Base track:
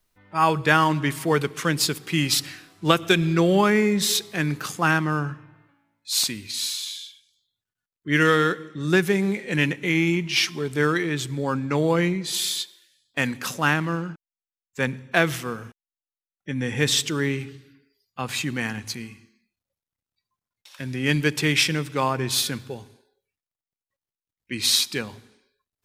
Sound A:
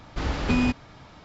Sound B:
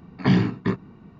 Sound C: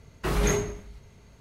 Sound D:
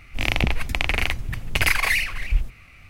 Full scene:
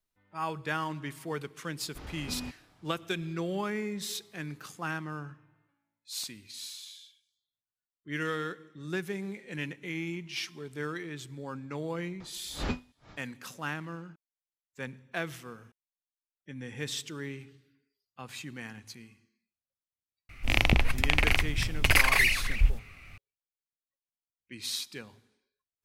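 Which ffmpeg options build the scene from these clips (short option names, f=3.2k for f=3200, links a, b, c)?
-filter_complex "[1:a]asplit=2[a][b];[0:a]volume=-14.5dB[c];[b]aeval=exprs='val(0)*pow(10,-39*(0.5-0.5*cos(2*PI*2.2*n/s))/20)':c=same[d];[a]atrim=end=1.24,asetpts=PTS-STARTPTS,volume=-17dB,afade=t=in:d=0.004:c=hsin,afade=t=out:st=1.236:d=0.004:c=hsin,adelay=1790[e];[d]atrim=end=1.24,asetpts=PTS-STARTPTS,volume=-3dB,afade=t=in:d=0.004:c=hsin,afade=t=out:st=1.236:d=0.004:c=hsin,adelay=538020S[f];[4:a]atrim=end=2.89,asetpts=PTS-STARTPTS,volume=-2dB,afade=t=in:d=0.004:c=hsin,afade=t=out:st=2.886:d=0.004:c=hsin,adelay=20290[g];[c][e][f][g]amix=inputs=4:normalize=0"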